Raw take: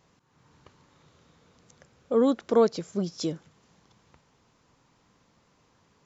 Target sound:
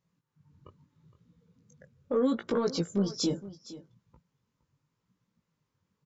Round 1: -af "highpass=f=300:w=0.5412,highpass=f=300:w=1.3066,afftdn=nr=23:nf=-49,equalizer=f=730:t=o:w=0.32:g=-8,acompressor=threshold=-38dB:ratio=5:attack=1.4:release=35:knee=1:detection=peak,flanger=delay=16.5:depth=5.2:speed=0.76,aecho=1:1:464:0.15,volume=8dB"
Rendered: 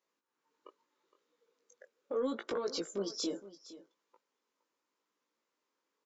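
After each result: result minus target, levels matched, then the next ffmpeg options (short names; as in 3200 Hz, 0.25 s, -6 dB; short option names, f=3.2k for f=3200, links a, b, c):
compressor: peak gain reduction +6.5 dB; 250 Hz band -3.5 dB
-af "highpass=f=300:w=0.5412,highpass=f=300:w=1.3066,afftdn=nr=23:nf=-49,equalizer=f=730:t=o:w=0.32:g=-8,acompressor=threshold=-29dB:ratio=5:attack=1.4:release=35:knee=1:detection=peak,flanger=delay=16.5:depth=5.2:speed=0.76,aecho=1:1:464:0.15,volume=8dB"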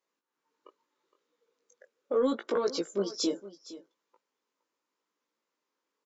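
250 Hz band -3.0 dB
-af "afftdn=nr=23:nf=-49,equalizer=f=730:t=o:w=0.32:g=-8,acompressor=threshold=-29dB:ratio=5:attack=1.4:release=35:knee=1:detection=peak,flanger=delay=16.5:depth=5.2:speed=0.76,aecho=1:1:464:0.15,volume=8dB"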